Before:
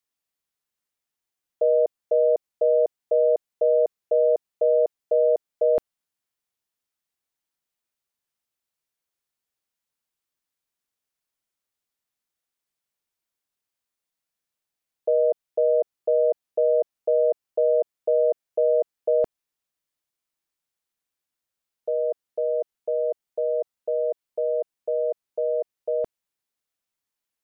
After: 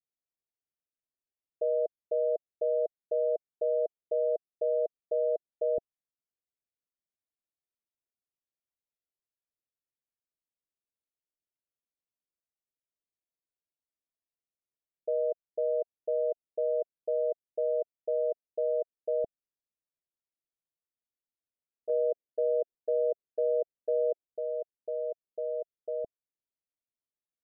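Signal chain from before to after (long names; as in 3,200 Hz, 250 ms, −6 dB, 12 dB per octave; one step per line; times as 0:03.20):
Chebyshev low-pass filter 680 Hz, order 5
0:21.89–0:24.24: dynamic equaliser 410 Hz, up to +8 dB, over −40 dBFS, Q 1.1
level −8.5 dB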